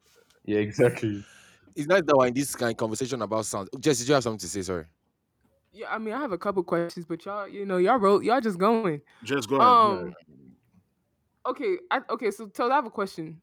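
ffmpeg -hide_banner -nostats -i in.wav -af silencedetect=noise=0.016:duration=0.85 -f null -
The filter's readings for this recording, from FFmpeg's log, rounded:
silence_start: 4.81
silence_end: 5.80 | silence_duration: 0.99
silence_start: 10.11
silence_end: 11.45 | silence_duration: 1.34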